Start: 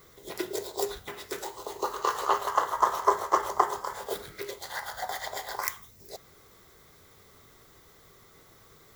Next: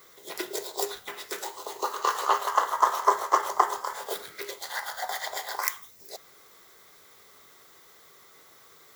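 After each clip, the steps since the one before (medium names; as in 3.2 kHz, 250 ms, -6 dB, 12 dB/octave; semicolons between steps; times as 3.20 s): high-pass 660 Hz 6 dB/octave; trim +3.5 dB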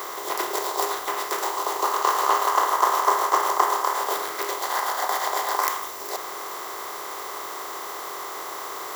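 spectral levelling over time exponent 0.4; trim -2 dB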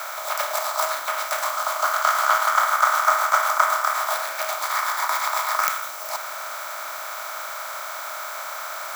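frequency shift +230 Hz; trim +1.5 dB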